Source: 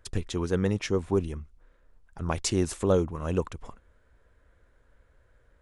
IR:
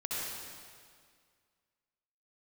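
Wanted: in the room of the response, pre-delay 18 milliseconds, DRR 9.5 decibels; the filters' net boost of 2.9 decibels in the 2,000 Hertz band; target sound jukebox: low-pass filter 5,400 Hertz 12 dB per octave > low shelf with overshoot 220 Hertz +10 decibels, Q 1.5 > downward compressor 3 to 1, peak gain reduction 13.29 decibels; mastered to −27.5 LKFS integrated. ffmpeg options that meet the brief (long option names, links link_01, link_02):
-filter_complex "[0:a]equalizer=frequency=2000:width_type=o:gain=4,asplit=2[link_01][link_02];[1:a]atrim=start_sample=2205,adelay=18[link_03];[link_02][link_03]afir=irnorm=-1:irlink=0,volume=-14dB[link_04];[link_01][link_04]amix=inputs=2:normalize=0,lowpass=5400,lowshelf=frequency=220:width_type=q:width=1.5:gain=10,acompressor=threshold=-30dB:ratio=3,volume=6dB"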